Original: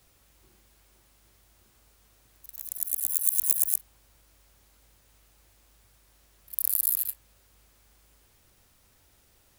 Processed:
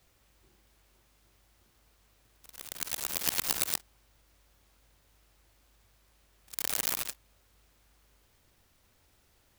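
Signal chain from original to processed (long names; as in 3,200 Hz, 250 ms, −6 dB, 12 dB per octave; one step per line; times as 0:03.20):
converter with an unsteady clock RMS 0.029 ms
level −3.5 dB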